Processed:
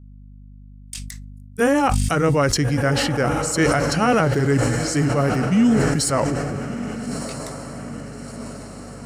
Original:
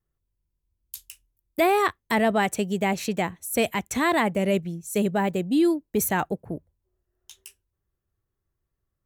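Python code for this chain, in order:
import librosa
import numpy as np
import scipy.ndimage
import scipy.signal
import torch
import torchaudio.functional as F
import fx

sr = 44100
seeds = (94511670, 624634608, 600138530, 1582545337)

p1 = fx.pitch_heads(x, sr, semitones=-6.0)
p2 = fx.low_shelf(p1, sr, hz=170.0, db=-7.0)
p3 = fx.rider(p2, sr, range_db=10, speed_s=2.0)
p4 = p2 + (p3 * librosa.db_to_amplitude(-2.0))
p5 = fx.noise_reduce_blind(p4, sr, reduce_db=9)
p6 = fx.add_hum(p5, sr, base_hz=50, snr_db=22)
p7 = fx.bass_treble(p6, sr, bass_db=3, treble_db=0)
p8 = p7 + fx.echo_diffused(p7, sr, ms=1307, feedback_pct=57, wet_db=-11.5, dry=0)
y = fx.sustainer(p8, sr, db_per_s=22.0)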